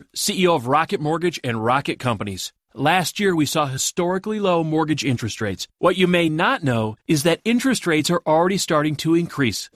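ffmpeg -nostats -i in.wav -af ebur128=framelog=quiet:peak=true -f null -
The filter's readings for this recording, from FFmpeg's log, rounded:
Integrated loudness:
  I:         -20.1 LUFS
  Threshold: -30.2 LUFS
Loudness range:
  LRA:         2.2 LU
  Threshold: -40.3 LUFS
  LRA low:   -21.3 LUFS
  LRA high:  -19.0 LUFS
True peak:
  Peak:       -3.5 dBFS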